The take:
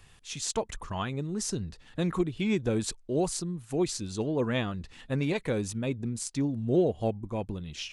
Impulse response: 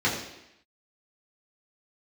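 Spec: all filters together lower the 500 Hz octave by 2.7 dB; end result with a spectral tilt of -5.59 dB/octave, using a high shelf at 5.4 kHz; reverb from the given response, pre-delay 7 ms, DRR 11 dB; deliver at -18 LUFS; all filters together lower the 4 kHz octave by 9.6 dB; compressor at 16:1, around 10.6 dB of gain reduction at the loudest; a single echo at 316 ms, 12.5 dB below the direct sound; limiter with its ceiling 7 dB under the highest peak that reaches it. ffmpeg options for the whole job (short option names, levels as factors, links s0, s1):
-filter_complex "[0:a]equalizer=f=500:t=o:g=-3.5,equalizer=f=4000:t=o:g=-9,highshelf=f=5400:g=-8.5,acompressor=threshold=0.0251:ratio=16,alimiter=level_in=2:limit=0.0631:level=0:latency=1,volume=0.501,aecho=1:1:316:0.237,asplit=2[s0][s1];[1:a]atrim=start_sample=2205,adelay=7[s2];[s1][s2]afir=irnorm=-1:irlink=0,volume=0.0562[s3];[s0][s3]amix=inputs=2:normalize=0,volume=11.2"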